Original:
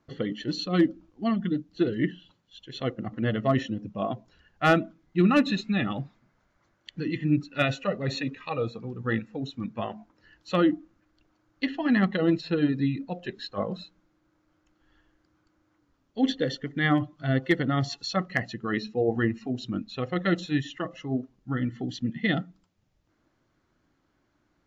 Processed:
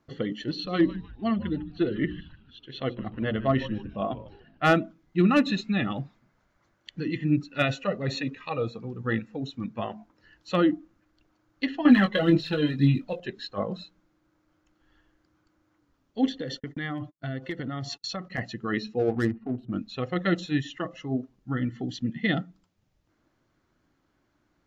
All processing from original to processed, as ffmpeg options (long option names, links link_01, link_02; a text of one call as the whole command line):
ffmpeg -i in.wav -filter_complex "[0:a]asettb=1/sr,asplit=3[link_01][link_02][link_03];[link_01]atrim=end=0.494[link_04];[link_02]atrim=start=0.49:end=4.63,asetpts=PTS-STARTPTS,afade=type=in:duration=0.004:curve=qsin,afade=type=out:start_time=4.136:duration=0.004:curve=qsin,lowpass=frequency=4500:width=0.5412,lowpass=frequency=4500:width=1.3066,bandreject=frequency=60:width_type=h:width=6,bandreject=frequency=120:width_type=h:width=6,bandreject=frequency=180:width_type=h:width=6,bandreject=frequency=240:width_type=h:width=6,bandreject=frequency=300:width_type=h:width=6,bandreject=frequency=360:width_type=h:width=6,bandreject=frequency=420:width_type=h:width=6,asplit=5[link_05][link_06][link_07][link_08][link_09];[link_06]adelay=151,afreqshift=-140,volume=-16dB[link_10];[link_07]adelay=302,afreqshift=-280,volume=-24dB[link_11];[link_08]adelay=453,afreqshift=-420,volume=-31.9dB[link_12];[link_09]adelay=604,afreqshift=-560,volume=-39.9dB[link_13];[link_05][link_10][link_11][link_12][link_13]amix=inputs=5:normalize=0,atrim=end_sample=182574[link_14];[link_03]atrim=start=4.626[link_15];[link_04][link_14]acrossfade=duration=0.004:curve1=hsin:curve2=qsin[link_16];[link_16][link_15]acrossfade=duration=0.004:curve1=qsin:curve2=hsin,asettb=1/sr,asplit=3[link_17][link_18][link_19];[link_17]atrim=end=11.854[link_20];[link_18]atrim=start=11.85:end=13.2,asetpts=PTS-STARTPTS,afade=type=in:duration=0.004:curve=qsin,afade=type=out:start_time=1.346:duration=0.004:curve=qsin,equalizer=frequency=3300:width=3.1:gain=6,aphaser=in_gain=1:out_gain=1:delay=2:decay=0.61:speed=1.9:type=sinusoidal,asplit=2[link_21][link_22];[link_22]adelay=20,volume=-7dB[link_23];[link_21][link_23]amix=inputs=2:normalize=0,atrim=end_sample=59535[link_24];[link_19]atrim=start=13.196[link_25];[link_20][link_24]acrossfade=duration=0.004:curve1=hsin:curve2=qsin[link_26];[link_26][link_25]acrossfade=duration=0.004:curve1=qsin:curve2=hsin,asettb=1/sr,asplit=3[link_27][link_28][link_29];[link_27]atrim=end=16.274[link_30];[link_28]atrim=start=16.27:end=18.38,asetpts=PTS-STARTPTS,afade=type=in:duration=0.004:curve=qsin,afade=type=out:start_time=2.106:duration=0.004:curve=qsin,agate=range=-39dB:threshold=-45dB:ratio=16:release=100:detection=peak,acompressor=threshold=-29dB:ratio=6:attack=3.2:release=140:knee=1:detection=peak[link_31];[link_29]atrim=start=18.376[link_32];[link_30][link_31]acrossfade=duration=0.004:curve1=hsin:curve2=qsin[link_33];[link_33][link_32]acrossfade=duration=0.004:curve1=qsin:curve2=hsin,asettb=1/sr,asplit=3[link_34][link_35][link_36];[link_34]atrim=end=18.994[link_37];[link_35]atrim=start=18.99:end=19.73,asetpts=PTS-STARTPTS,afade=type=in:duration=0.004:curve=qsin,afade=type=out:start_time=0.736:duration=0.004:curve=qsin,aemphasis=mode=reproduction:type=75kf,adynamicsmooth=sensitivity=5.5:basefreq=850[link_38];[link_36]atrim=start=19.726[link_39];[link_37][link_38]acrossfade=duration=0.004:curve1=hsin:curve2=qsin[link_40];[link_40][link_39]acrossfade=duration=0.004:curve1=qsin:curve2=hsin" out.wav